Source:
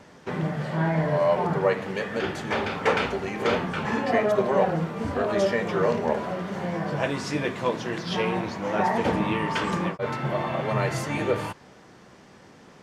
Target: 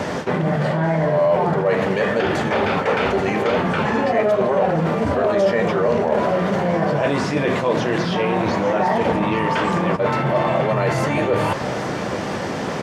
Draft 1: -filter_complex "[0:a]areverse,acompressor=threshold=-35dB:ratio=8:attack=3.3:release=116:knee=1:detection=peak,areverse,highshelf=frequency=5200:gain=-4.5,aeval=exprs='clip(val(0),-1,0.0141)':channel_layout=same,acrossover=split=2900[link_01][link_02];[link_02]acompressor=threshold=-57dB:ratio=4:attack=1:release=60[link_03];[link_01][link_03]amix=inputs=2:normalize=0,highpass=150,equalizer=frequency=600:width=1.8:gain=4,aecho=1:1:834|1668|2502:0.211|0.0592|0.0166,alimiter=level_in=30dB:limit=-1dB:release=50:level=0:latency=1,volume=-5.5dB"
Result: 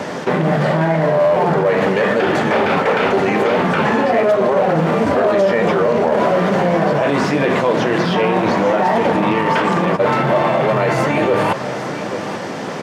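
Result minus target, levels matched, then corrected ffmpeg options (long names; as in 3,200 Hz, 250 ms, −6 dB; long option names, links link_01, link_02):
downward compressor: peak gain reduction −6.5 dB; 125 Hz band −2.0 dB
-filter_complex "[0:a]areverse,acompressor=threshold=-42.5dB:ratio=8:attack=3.3:release=116:knee=1:detection=peak,areverse,highshelf=frequency=5200:gain=-4.5,aeval=exprs='clip(val(0),-1,0.0141)':channel_layout=same,acrossover=split=2900[link_01][link_02];[link_02]acompressor=threshold=-57dB:ratio=4:attack=1:release=60[link_03];[link_01][link_03]amix=inputs=2:normalize=0,highpass=55,equalizer=frequency=600:width=1.8:gain=4,aecho=1:1:834|1668|2502:0.211|0.0592|0.0166,alimiter=level_in=30dB:limit=-1dB:release=50:level=0:latency=1,volume=-5.5dB"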